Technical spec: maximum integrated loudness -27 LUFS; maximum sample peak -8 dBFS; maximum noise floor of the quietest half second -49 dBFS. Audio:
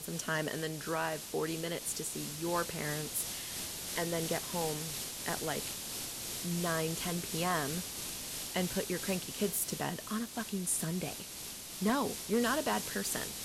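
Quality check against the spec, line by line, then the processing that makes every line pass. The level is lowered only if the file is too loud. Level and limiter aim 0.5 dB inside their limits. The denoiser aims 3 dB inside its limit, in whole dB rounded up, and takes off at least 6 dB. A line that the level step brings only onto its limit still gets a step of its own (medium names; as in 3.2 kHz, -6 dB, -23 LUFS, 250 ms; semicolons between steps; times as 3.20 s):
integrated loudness -35.0 LUFS: pass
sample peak -19.5 dBFS: pass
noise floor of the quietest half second -45 dBFS: fail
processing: noise reduction 7 dB, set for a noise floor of -45 dBFS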